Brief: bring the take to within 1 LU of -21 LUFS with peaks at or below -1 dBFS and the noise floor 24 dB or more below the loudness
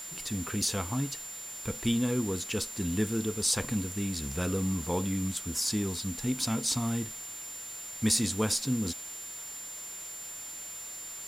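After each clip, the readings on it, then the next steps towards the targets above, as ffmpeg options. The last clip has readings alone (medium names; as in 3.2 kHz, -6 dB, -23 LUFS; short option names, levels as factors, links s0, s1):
steady tone 7.2 kHz; tone level -40 dBFS; noise floor -42 dBFS; noise floor target -55 dBFS; loudness -31.0 LUFS; peak level -12.5 dBFS; loudness target -21.0 LUFS
-> -af "bandreject=f=7200:w=30"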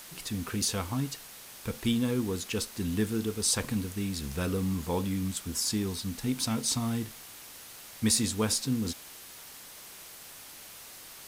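steady tone not found; noise floor -48 dBFS; noise floor target -55 dBFS
-> -af "afftdn=nr=7:nf=-48"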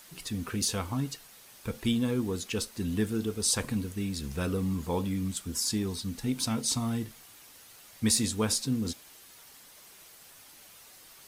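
noise floor -54 dBFS; noise floor target -55 dBFS
-> -af "afftdn=nr=6:nf=-54"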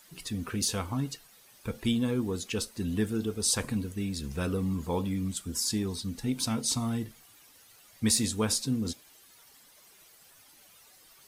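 noise floor -58 dBFS; loudness -30.5 LUFS; peak level -12.5 dBFS; loudness target -21.0 LUFS
-> -af "volume=2.99"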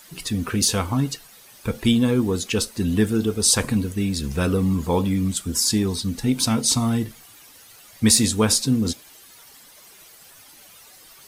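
loudness -21.0 LUFS; peak level -3.0 dBFS; noise floor -48 dBFS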